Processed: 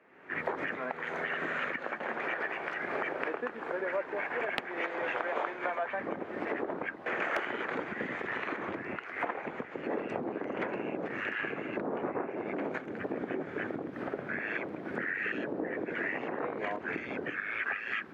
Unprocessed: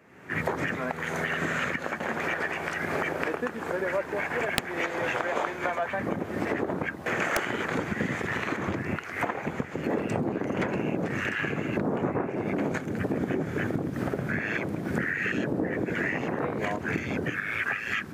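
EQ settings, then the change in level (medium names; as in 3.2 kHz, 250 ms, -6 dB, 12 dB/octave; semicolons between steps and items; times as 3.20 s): three-band isolator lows -16 dB, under 260 Hz, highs -22 dB, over 3.6 kHz; -4.0 dB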